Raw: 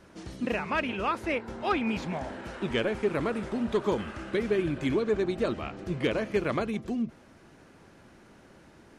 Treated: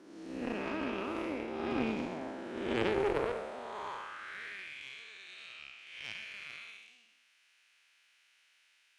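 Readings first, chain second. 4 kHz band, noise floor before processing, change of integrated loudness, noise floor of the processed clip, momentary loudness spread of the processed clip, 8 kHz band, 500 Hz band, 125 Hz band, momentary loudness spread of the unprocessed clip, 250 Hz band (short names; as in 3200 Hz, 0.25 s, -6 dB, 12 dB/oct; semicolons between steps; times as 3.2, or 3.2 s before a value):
-5.5 dB, -55 dBFS, -8.0 dB, -69 dBFS, 15 LU, n/a, -8.5 dB, -13.0 dB, 7 LU, -8.5 dB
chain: time blur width 0.262 s; high-pass sweep 290 Hz -> 2600 Hz, 2.8–4.84; added harmonics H 2 -9 dB, 3 -16 dB, 8 -42 dB, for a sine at -17.5 dBFS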